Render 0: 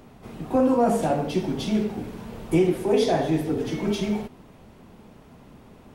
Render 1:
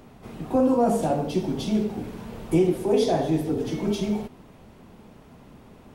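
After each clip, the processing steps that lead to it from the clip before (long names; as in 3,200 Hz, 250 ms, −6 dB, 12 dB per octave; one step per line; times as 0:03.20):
dynamic equaliser 1,900 Hz, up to −6 dB, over −43 dBFS, Q 1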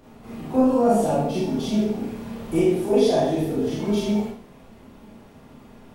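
four-comb reverb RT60 0.45 s, combs from 27 ms, DRR −5.5 dB
level −4.5 dB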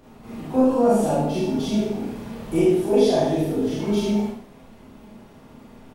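single-tap delay 73 ms −7.5 dB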